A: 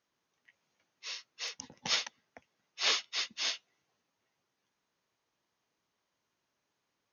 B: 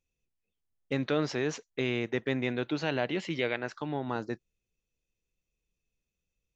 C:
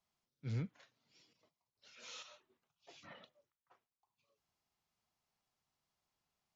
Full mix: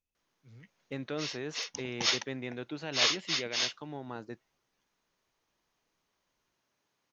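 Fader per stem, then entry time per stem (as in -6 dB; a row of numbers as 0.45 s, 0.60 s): +2.5 dB, -8.0 dB, -16.0 dB; 0.15 s, 0.00 s, 0.00 s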